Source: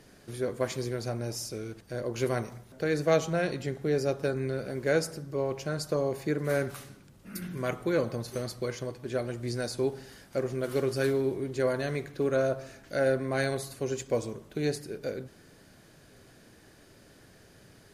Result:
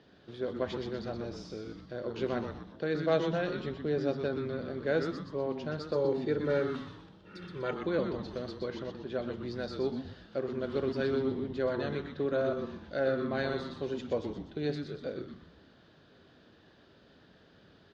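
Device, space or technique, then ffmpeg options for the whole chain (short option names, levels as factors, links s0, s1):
frequency-shifting delay pedal into a guitar cabinet: -filter_complex "[0:a]asettb=1/sr,asplit=3[s0][s1][s2];[s0]atrim=end=5.954[s3];[s1]atrim=start=5.95:end=7.81,asetpts=PTS-STARTPTS,afade=t=in:d=0.004:c=qsin,afade=t=out:st=1.856:d=0.004:c=qsin,aecho=1:1:2.2:0.79,atrim=end_sample=82026[s4];[s2]atrim=start=7.806[s5];[s3][s4]acrossfade=d=0.004:c1=hsin:c2=qsin[s6];[s6][s5]acrossfade=d=0.004:c1=qsin:c2=hsin,asplit=6[s7][s8][s9][s10][s11][s12];[s8]adelay=123,afreqshift=-150,volume=0.501[s13];[s9]adelay=246,afreqshift=-300,volume=0.221[s14];[s10]adelay=369,afreqshift=-450,volume=0.0966[s15];[s11]adelay=492,afreqshift=-600,volume=0.0427[s16];[s12]adelay=615,afreqshift=-750,volume=0.0188[s17];[s7][s13][s14][s15][s16][s17]amix=inputs=6:normalize=0,highpass=78,equalizer=f=120:t=q:w=4:g=-6,equalizer=f=2200:t=q:w=4:g=-7,equalizer=f=3500:t=q:w=4:g=5,lowpass=f=4100:w=0.5412,lowpass=f=4100:w=1.3066,volume=0.668"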